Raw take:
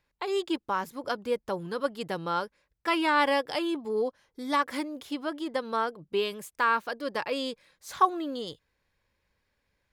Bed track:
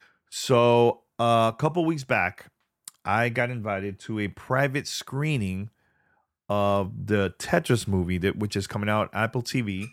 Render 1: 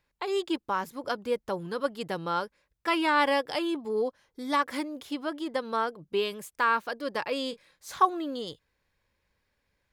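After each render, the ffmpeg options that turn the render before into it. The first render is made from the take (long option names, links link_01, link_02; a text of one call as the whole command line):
ffmpeg -i in.wav -filter_complex "[0:a]asettb=1/sr,asplit=3[link_01][link_02][link_03];[link_01]atrim=end=7.484[link_04];[link_02]atrim=start=7.48:end=7.98,asetpts=PTS-STARTPTS,afade=type=in:duration=0.004:curve=qsin,afade=type=out:start_time=0.496:duration=0.004:curve=qsin,asplit=2[link_05][link_06];[link_06]adelay=30,volume=-13dB[link_07];[link_05][link_07]amix=inputs=2:normalize=0,atrim=end_sample=22050[link_08];[link_03]atrim=start=7.976[link_09];[link_04][link_08]acrossfade=duration=0.004:curve1=hsin:curve2=qsin[link_10];[link_10][link_09]acrossfade=duration=0.004:curve1=qsin:curve2=hsin" out.wav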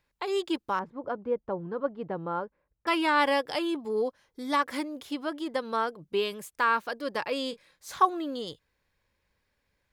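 ffmpeg -i in.wav -filter_complex "[0:a]asettb=1/sr,asplit=3[link_01][link_02][link_03];[link_01]atrim=end=0.794[link_04];[link_02]atrim=start=0.79:end=2.87,asetpts=PTS-STARTPTS,afade=type=in:duration=0.004:curve=qsin,afade=type=out:start_time=2.076:duration=0.004:curve=qsin,lowpass=1100[link_05];[link_03]atrim=start=2.866[link_06];[link_04][link_05]acrossfade=duration=0.004:curve1=hsin:curve2=qsin[link_07];[link_07][link_06]acrossfade=duration=0.004:curve1=qsin:curve2=hsin" out.wav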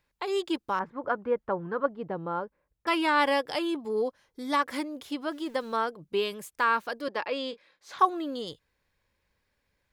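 ffmpeg -i in.wav -filter_complex "[0:a]asettb=1/sr,asplit=3[link_01][link_02][link_03];[link_01]atrim=end=0.804[link_04];[link_02]atrim=start=0.8:end=1.86,asetpts=PTS-STARTPTS,afade=type=in:duration=0.004:curve=qsin,afade=type=out:start_time=1.056:duration=0.004:curve=qsin,equalizer=frequency=1600:width=0.8:gain=10[link_05];[link_03]atrim=start=1.856[link_06];[link_04][link_05]acrossfade=duration=0.004:curve1=hsin:curve2=qsin[link_07];[link_07][link_06]acrossfade=duration=0.004:curve1=qsin:curve2=hsin,asettb=1/sr,asplit=3[link_08][link_09][link_10];[link_08]atrim=end=5.314[link_11];[link_09]atrim=start=5.31:end=5.77,asetpts=PTS-STARTPTS,afade=type=in:duration=0.004:curve=qsin,afade=type=out:start_time=0.456:duration=0.004:curve=qsin,aeval=exprs='val(0)*gte(abs(val(0)),0.00299)':channel_layout=same[link_12];[link_10]atrim=start=5.766[link_13];[link_11][link_12]acrossfade=duration=0.004:curve1=hsin:curve2=qsin[link_14];[link_14][link_13]acrossfade=duration=0.004:curve1=qsin:curve2=hsin,asettb=1/sr,asplit=3[link_15][link_16][link_17];[link_15]atrim=end=7.084[link_18];[link_16]atrim=start=7.08:end=7.99,asetpts=PTS-STARTPTS,afade=type=in:duration=0.004:curve=qsin,afade=type=out:start_time=0.906:duration=0.004:curve=qsin,acrossover=split=220 5200:gain=0.141 1 0.141[link_19][link_20][link_21];[link_19][link_20][link_21]amix=inputs=3:normalize=0[link_22];[link_17]atrim=start=7.986[link_23];[link_18][link_22]acrossfade=duration=0.004:curve1=hsin:curve2=qsin[link_24];[link_24][link_23]acrossfade=duration=0.004:curve1=qsin:curve2=hsin" out.wav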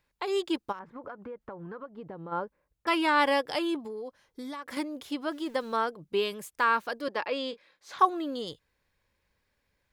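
ffmpeg -i in.wav -filter_complex "[0:a]asplit=3[link_01][link_02][link_03];[link_01]afade=type=out:start_time=0.71:duration=0.02[link_04];[link_02]acompressor=threshold=-37dB:ratio=12:attack=3.2:release=140:knee=1:detection=peak,afade=type=in:start_time=0.71:duration=0.02,afade=type=out:start_time=2.31:duration=0.02[link_05];[link_03]afade=type=in:start_time=2.31:duration=0.02[link_06];[link_04][link_05][link_06]amix=inputs=3:normalize=0,asettb=1/sr,asplit=3[link_07][link_08][link_09];[link_07]atrim=end=3.784[link_10];[link_08]atrim=start=3.78:end=4.77,asetpts=PTS-STARTPTS,afade=type=in:duration=0.004:curve=qsin,afade=type=out:start_time=0.986:duration=0.004:curve=qsin,acompressor=threshold=-35dB:ratio=12:attack=3.2:release=140:knee=1:detection=peak[link_11];[link_09]atrim=start=4.766[link_12];[link_10][link_11]acrossfade=duration=0.004:curve1=hsin:curve2=qsin[link_13];[link_13][link_12]acrossfade=duration=0.004:curve1=qsin:curve2=hsin" out.wav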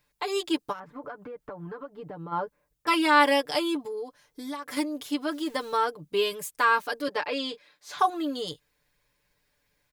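ffmpeg -i in.wav -af "highshelf=frequency=5100:gain=8,aecho=1:1:6.8:0.77" out.wav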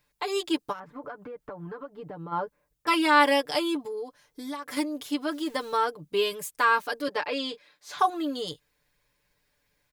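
ffmpeg -i in.wav -af anull out.wav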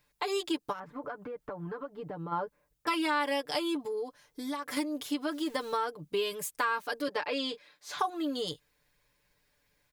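ffmpeg -i in.wav -af "acompressor=threshold=-29dB:ratio=3" out.wav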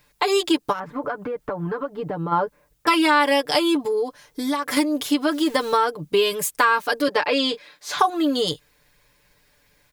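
ffmpeg -i in.wav -af "volume=12dB" out.wav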